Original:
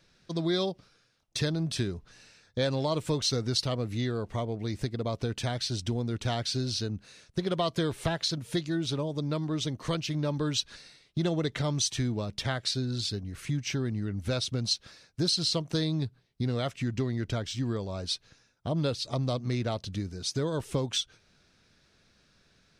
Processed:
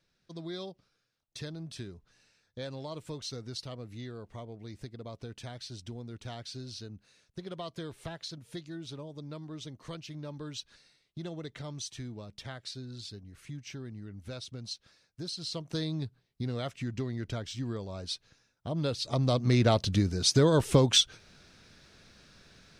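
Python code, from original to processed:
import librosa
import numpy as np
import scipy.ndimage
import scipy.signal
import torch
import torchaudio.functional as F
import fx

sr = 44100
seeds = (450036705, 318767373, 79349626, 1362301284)

y = fx.gain(x, sr, db=fx.line((15.35, -11.5), (15.78, -4.5), (18.67, -4.5), (19.67, 7.5)))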